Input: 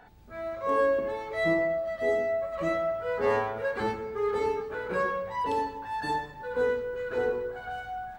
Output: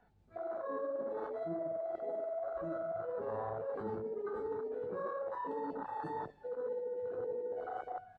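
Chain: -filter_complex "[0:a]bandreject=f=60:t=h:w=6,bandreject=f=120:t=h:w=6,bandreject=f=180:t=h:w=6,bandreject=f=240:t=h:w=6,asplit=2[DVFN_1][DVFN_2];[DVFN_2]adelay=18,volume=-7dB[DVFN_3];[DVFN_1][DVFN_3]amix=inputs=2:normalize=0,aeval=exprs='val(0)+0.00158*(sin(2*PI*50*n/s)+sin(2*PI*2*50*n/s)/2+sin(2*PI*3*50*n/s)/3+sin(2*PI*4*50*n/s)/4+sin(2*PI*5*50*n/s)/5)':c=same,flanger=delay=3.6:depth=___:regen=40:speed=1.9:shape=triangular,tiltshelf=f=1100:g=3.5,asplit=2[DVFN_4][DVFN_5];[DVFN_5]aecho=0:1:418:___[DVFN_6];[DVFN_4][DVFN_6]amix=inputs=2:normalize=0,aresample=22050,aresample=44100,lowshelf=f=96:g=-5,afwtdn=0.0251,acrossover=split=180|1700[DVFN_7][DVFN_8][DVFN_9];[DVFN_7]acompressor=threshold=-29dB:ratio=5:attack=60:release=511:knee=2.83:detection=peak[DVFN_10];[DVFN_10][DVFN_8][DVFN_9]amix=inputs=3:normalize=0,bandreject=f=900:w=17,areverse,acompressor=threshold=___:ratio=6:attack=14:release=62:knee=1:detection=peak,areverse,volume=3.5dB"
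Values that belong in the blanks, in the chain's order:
8.7, 0.0891, -43dB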